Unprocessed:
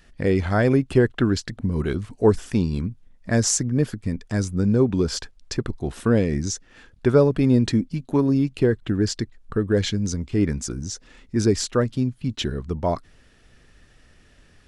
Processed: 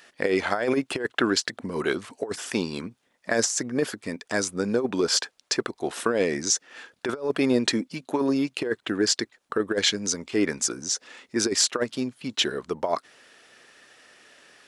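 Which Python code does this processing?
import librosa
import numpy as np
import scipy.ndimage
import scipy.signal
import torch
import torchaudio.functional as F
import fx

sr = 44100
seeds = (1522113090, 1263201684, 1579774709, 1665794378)

y = scipy.signal.sosfilt(scipy.signal.butter(2, 480.0, 'highpass', fs=sr, output='sos'), x)
y = fx.over_compress(y, sr, threshold_db=-26.0, ratio=-0.5)
y = F.gain(torch.from_numpy(y), 4.5).numpy()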